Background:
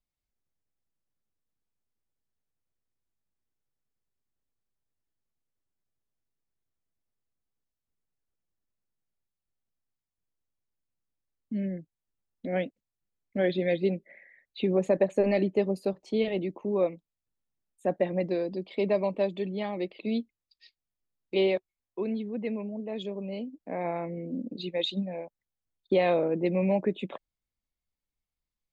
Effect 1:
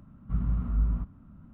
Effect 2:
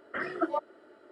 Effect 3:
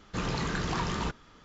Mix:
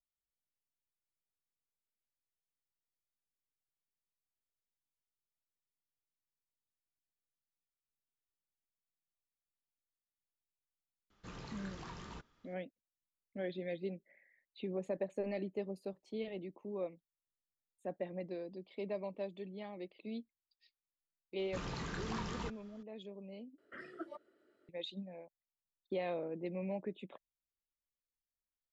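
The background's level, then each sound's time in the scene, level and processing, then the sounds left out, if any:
background −14 dB
0:11.10: mix in 3 −17.5 dB
0:21.39: mix in 3 −10.5 dB
0:23.58: overwrite with 2 −14 dB + parametric band 870 Hz −11 dB 0.84 octaves
not used: 1

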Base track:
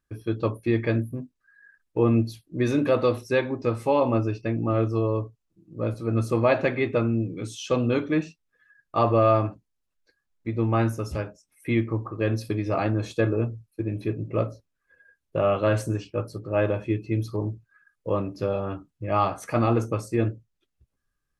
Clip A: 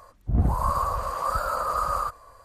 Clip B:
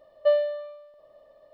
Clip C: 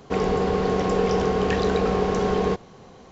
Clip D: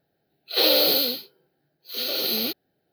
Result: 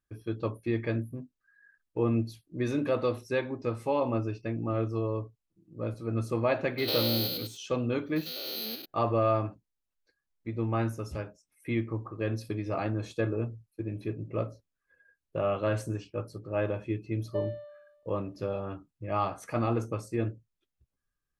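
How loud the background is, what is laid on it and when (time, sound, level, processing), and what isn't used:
base track −6.5 dB
0:06.29: mix in D −9.5 dB + spectrum averaged block by block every 100 ms
0:17.09: mix in B −16 dB + low-shelf EQ 490 Hz +8.5 dB
not used: A, C

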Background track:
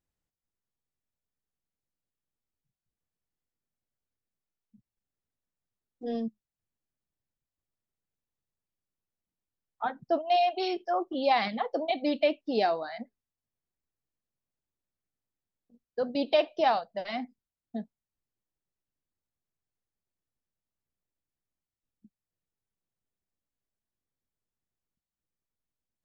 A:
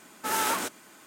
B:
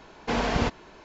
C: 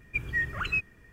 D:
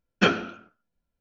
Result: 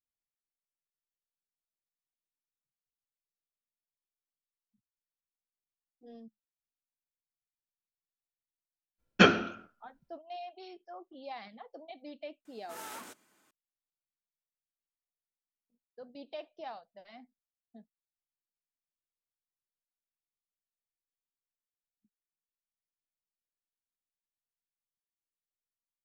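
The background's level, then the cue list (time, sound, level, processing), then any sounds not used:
background track −18.5 dB
0:08.98: mix in D, fades 0.02 s
0:12.45: mix in A −17.5 dB
not used: B, C

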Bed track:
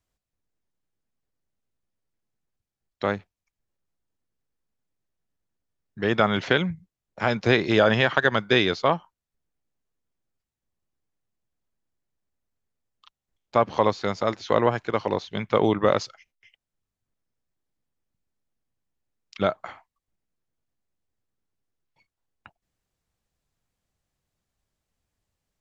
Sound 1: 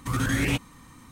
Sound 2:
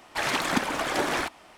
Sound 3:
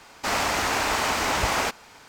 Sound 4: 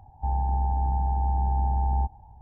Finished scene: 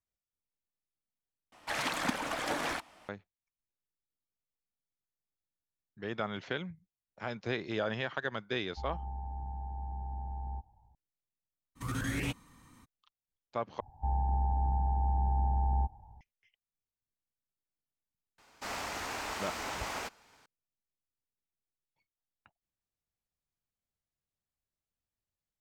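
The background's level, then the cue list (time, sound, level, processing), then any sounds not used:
bed track −15 dB
0:01.52: overwrite with 2 −7 dB + notch filter 380 Hz, Q 5.9
0:08.54: mix in 4 −15 dB
0:11.75: mix in 1 −9.5 dB, fades 0.02 s
0:13.80: overwrite with 4 −5 dB
0:18.38: mix in 3 −14 dB

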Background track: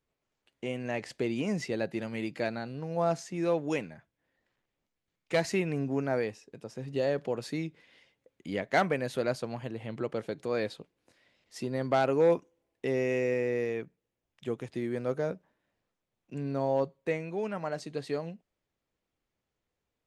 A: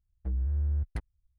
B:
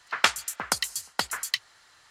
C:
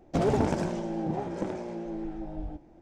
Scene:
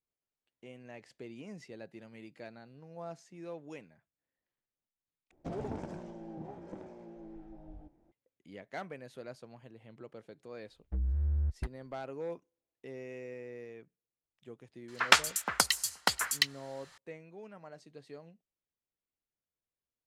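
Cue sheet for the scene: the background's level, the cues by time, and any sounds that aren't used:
background track −15.5 dB
0:05.31: overwrite with C −13.5 dB + high-shelf EQ 2,600 Hz −6 dB
0:10.67: mix in A −2 dB
0:14.88: mix in B −0.5 dB

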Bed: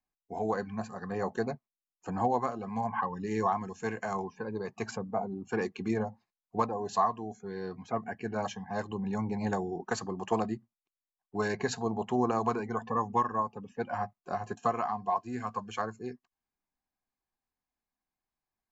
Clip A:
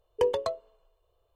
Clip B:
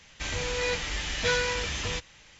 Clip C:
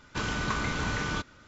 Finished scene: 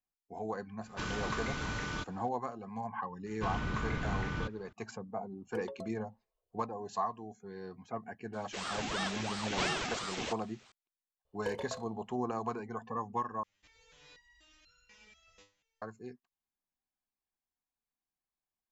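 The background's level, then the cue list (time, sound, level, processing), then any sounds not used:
bed −7 dB
0:00.82: mix in C −6.5 dB
0:03.26: mix in C −7.5 dB + bass and treble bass +6 dB, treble −10 dB
0:05.34: mix in A −13.5 dB + phaser with staggered stages 4.3 Hz
0:08.33: mix in B −4.5 dB + ring modulator whose carrier an LFO sweeps 780 Hz, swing 70%, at 2.9 Hz
0:11.25: mix in A −11.5 dB + flutter between parallel walls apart 5.1 metres, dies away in 0.35 s
0:13.43: overwrite with B −16 dB + step-sequenced resonator 4.1 Hz 100–1,400 Hz

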